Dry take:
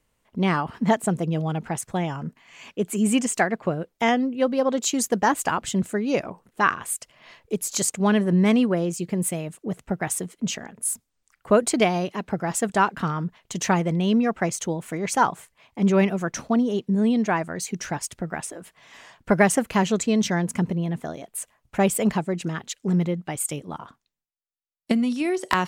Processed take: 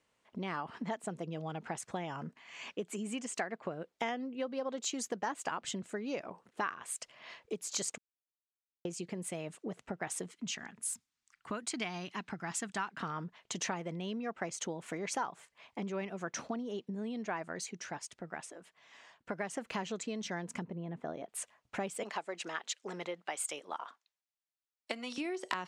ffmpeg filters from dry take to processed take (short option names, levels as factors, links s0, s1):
-filter_complex "[0:a]asettb=1/sr,asplit=3[s0][s1][s2];[s0]atrim=end=10.314[s3];[s1]atrim=start=10.31:end=12.97,asetpts=PTS-STARTPTS,afade=t=in:d=0.004:c=qsin,afade=t=out:st=2.656:d=0.004:c=qsin,equalizer=f=530:t=o:w=1.2:g=-14[s4];[s2]atrim=start=12.966[s5];[s3][s4]acrossfade=d=0.004:c1=hsin:c2=qsin[s6];[s6][s5]acrossfade=d=0.004:c1=qsin:c2=hsin,asettb=1/sr,asplit=3[s7][s8][s9];[s7]atrim=end=20.634[s10];[s8]atrim=start=20.63:end=21.29,asetpts=PTS-STARTPTS,afade=t=in:d=0.004:c=qsin,afade=t=out:st=0.656:d=0.004:c=qsin,lowpass=f=1200:p=1[s11];[s9]atrim=start=21.286[s12];[s10][s11]acrossfade=d=0.004:c1=hsin:c2=qsin[s13];[s13][s12]acrossfade=d=0.004:c1=qsin:c2=hsin,asettb=1/sr,asplit=3[s14][s15][s16];[s14]atrim=end=22.034[s17];[s15]atrim=start=22.03:end=25.18,asetpts=PTS-STARTPTS,afade=t=in:d=0.004:c=qsin,afade=t=out:st=3.146:d=0.004:c=qsin,highpass=560[s18];[s16]atrim=start=25.176[s19];[s17][s18]acrossfade=d=0.004:c1=hsin:c2=qsin[s20];[s20][s19]acrossfade=d=0.004:c1=qsin:c2=hsin,asplit=5[s21][s22][s23][s24][s25];[s21]atrim=end=7.98,asetpts=PTS-STARTPTS,afade=t=out:st=7.976:d=0.004:c=hsin[s26];[s22]atrim=start=7.98:end=8.85,asetpts=PTS-STARTPTS,volume=0[s27];[s23]atrim=start=8.85:end=17.72,asetpts=PTS-STARTPTS,afade=t=in:d=0.004:c=hsin,afade=t=out:st=8.65:d=0.22:silence=0.375837[s28];[s24]atrim=start=17.72:end=19.52,asetpts=PTS-STARTPTS,volume=0.376[s29];[s25]atrim=start=19.52,asetpts=PTS-STARTPTS,afade=t=in:d=0.22:silence=0.375837[s30];[s26][s27][s28][s29][s30]concat=n=5:v=0:a=1,lowpass=6900,acompressor=threshold=0.0282:ratio=6,highpass=f=350:p=1,volume=0.841"